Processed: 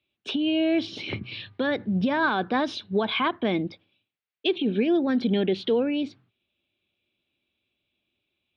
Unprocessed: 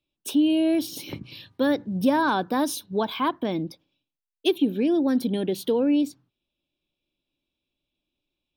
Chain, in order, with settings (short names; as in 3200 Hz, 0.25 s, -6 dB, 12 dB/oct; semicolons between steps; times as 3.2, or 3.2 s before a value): limiter -19 dBFS, peak gain reduction 9 dB; speaker cabinet 100–3700 Hz, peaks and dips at 100 Hz +5 dB, 150 Hz -10 dB, 290 Hz -9 dB, 540 Hz -5 dB, 940 Hz -7 dB, 2200 Hz +4 dB; gain +7 dB